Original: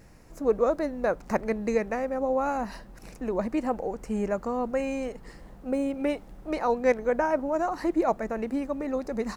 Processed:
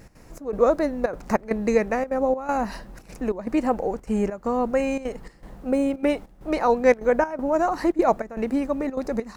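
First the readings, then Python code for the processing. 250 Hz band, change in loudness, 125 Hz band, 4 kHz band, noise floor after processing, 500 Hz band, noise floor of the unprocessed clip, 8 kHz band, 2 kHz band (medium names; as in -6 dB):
+4.5 dB, +4.5 dB, +4.0 dB, +4.5 dB, -50 dBFS, +4.0 dB, -49 dBFS, +4.5 dB, +4.0 dB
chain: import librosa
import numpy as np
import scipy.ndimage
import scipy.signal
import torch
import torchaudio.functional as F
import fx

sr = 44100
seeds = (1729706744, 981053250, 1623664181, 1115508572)

y = fx.step_gate(x, sr, bpm=199, pattern='x.xxx..xxxxxx', floor_db=-12.0, edge_ms=4.5)
y = F.gain(torch.from_numpy(y), 5.5).numpy()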